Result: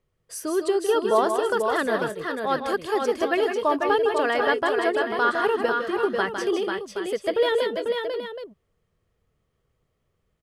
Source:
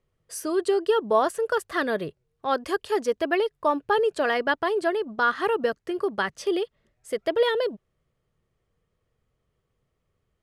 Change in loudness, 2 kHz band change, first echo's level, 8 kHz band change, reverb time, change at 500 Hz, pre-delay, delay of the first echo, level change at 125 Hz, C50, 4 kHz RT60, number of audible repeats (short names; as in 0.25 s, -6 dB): +1.5 dB, +2.0 dB, -7.0 dB, +2.0 dB, none, +2.0 dB, none, 0.157 s, n/a, none, none, 3